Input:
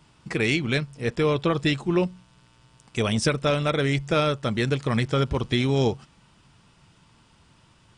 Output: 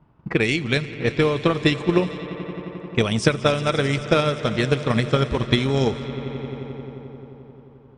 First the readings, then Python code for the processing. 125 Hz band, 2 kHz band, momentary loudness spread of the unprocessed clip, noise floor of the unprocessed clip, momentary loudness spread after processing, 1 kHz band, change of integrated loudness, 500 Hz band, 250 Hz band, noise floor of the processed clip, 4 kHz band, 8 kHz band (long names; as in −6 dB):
+2.5 dB, +3.5 dB, 5 LU, −59 dBFS, 13 LU, +3.0 dB, +2.5 dB, +3.5 dB, +3.0 dB, −49 dBFS, +3.0 dB, +0.5 dB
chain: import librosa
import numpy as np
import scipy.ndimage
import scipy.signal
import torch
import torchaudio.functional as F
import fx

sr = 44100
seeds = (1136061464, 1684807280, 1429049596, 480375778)

y = fx.echo_swell(x, sr, ms=88, loudest=5, wet_db=-17.0)
y = fx.env_lowpass(y, sr, base_hz=1000.0, full_db=-18.5)
y = fx.transient(y, sr, attack_db=8, sustain_db=0)